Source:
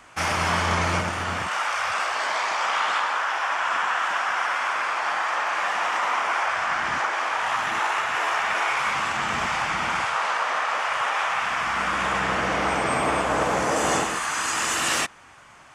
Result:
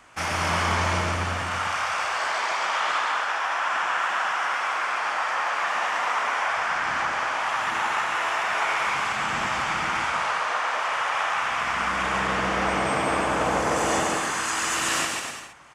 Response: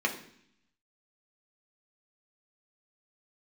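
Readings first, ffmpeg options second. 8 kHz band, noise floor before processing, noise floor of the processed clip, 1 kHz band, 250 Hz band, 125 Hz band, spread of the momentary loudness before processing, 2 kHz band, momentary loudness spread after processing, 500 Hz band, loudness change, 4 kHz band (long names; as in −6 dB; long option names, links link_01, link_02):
−1.0 dB, −48 dBFS, −29 dBFS, −1.0 dB, 0.0 dB, +0.5 dB, 2 LU, −1.0 dB, 2 LU, −0.5 dB, −1.0 dB, −1.0 dB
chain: -af "aecho=1:1:140|252|341.6|413.3|470.6:0.631|0.398|0.251|0.158|0.1,volume=-3dB"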